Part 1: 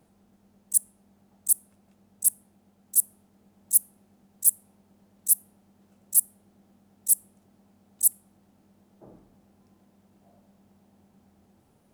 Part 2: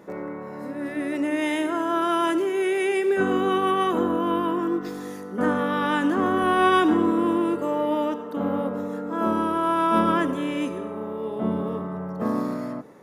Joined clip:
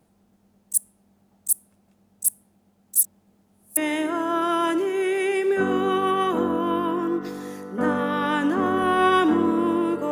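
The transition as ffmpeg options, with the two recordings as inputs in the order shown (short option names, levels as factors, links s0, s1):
-filter_complex "[0:a]apad=whole_dur=10.11,atrim=end=10.11,asplit=2[s0][s1];[s0]atrim=end=2.992[s2];[s1]atrim=start=2.988:end=3.772,asetpts=PTS-STARTPTS,areverse[s3];[1:a]atrim=start=1.368:end=7.71[s4];[s2][s3]acrossfade=d=0.004:c1=hsin:c2=hsin[s5];[s5][s4]acrossfade=d=0.004:c1=hsin:c2=hsin"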